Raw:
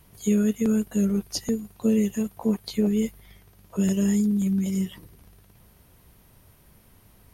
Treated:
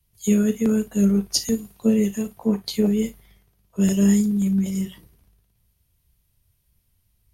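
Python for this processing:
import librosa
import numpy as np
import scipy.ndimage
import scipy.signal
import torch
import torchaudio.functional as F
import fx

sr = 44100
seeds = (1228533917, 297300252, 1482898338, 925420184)

p1 = x + fx.room_early_taps(x, sr, ms=(35, 56), db=(-12.5, -17.5), dry=0)
p2 = fx.band_widen(p1, sr, depth_pct=70)
y = F.gain(torch.from_numpy(p2), 2.5).numpy()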